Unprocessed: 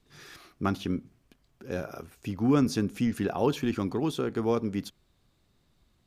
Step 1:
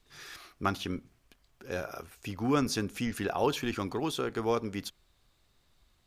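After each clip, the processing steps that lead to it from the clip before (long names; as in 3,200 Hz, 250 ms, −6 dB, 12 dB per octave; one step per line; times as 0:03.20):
parametric band 190 Hz −10 dB 2.6 octaves
level +3 dB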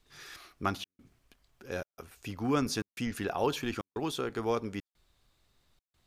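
gate pattern "xxxxxxxxxxx.." 197 BPM −60 dB
level −1.5 dB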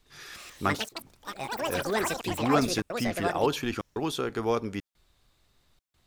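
delay with pitch and tempo change per echo 257 ms, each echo +7 semitones, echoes 3
level +3.5 dB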